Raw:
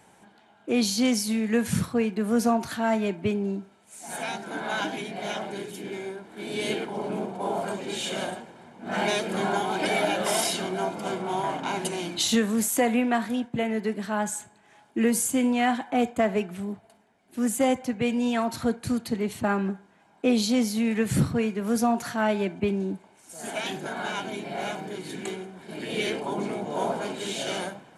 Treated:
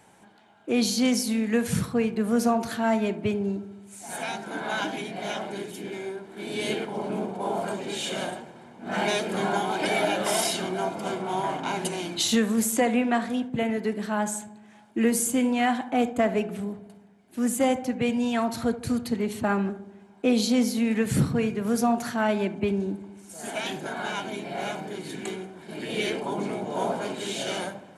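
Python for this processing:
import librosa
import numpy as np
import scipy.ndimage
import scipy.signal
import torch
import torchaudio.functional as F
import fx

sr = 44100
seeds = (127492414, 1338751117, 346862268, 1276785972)

y = fx.lowpass(x, sr, hz=10000.0, slope=24, at=(12.72, 13.33))
y = fx.echo_filtered(y, sr, ms=75, feedback_pct=73, hz=890.0, wet_db=-13.0)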